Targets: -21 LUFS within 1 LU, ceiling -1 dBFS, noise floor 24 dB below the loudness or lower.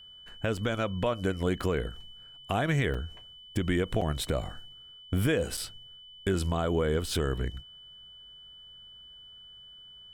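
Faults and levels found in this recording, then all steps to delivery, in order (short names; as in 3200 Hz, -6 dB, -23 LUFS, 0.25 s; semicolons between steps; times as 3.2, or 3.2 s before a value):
dropouts 5; longest dropout 5.2 ms; steady tone 3000 Hz; tone level -48 dBFS; loudness -30.5 LUFS; peak -15.5 dBFS; loudness target -21.0 LUFS
-> interpolate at 0.57/1.61/2.94/4.01/5.57, 5.2 ms; notch 3000 Hz, Q 30; gain +9.5 dB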